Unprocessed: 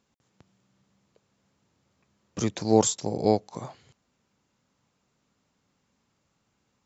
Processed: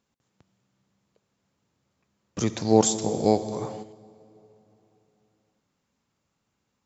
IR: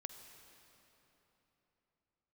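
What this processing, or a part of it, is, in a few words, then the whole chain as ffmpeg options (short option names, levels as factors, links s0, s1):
keyed gated reverb: -filter_complex "[0:a]asplit=3[s0][s1][s2];[1:a]atrim=start_sample=2205[s3];[s1][s3]afir=irnorm=-1:irlink=0[s4];[s2]apad=whole_len=302402[s5];[s4][s5]sidechaingate=range=0.316:threshold=0.00224:ratio=16:detection=peak,volume=3.35[s6];[s0][s6]amix=inputs=2:normalize=0,volume=0.398"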